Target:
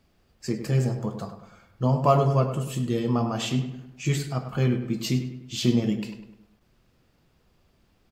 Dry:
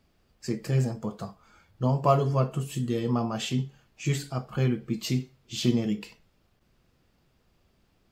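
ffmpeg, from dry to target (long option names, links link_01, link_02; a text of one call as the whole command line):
ffmpeg -i in.wav -filter_complex "[0:a]asplit=2[link_01][link_02];[link_02]adelay=101,lowpass=frequency=2700:poles=1,volume=-9dB,asplit=2[link_03][link_04];[link_04]adelay=101,lowpass=frequency=2700:poles=1,volume=0.5,asplit=2[link_05][link_06];[link_06]adelay=101,lowpass=frequency=2700:poles=1,volume=0.5,asplit=2[link_07][link_08];[link_08]adelay=101,lowpass=frequency=2700:poles=1,volume=0.5,asplit=2[link_09][link_10];[link_10]adelay=101,lowpass=frequency=2700:poles=1,volume=0.5,asplit=2[link_11][link_12];[link_12]adelay=101,lowpass=frequency=2700:poles=1,volume=0.5[link_13];[link_01][link_03][link_05][link_07][link_09][link_11][link_13]amix=inputs=7:normalize=0,volume=2dB" out.wav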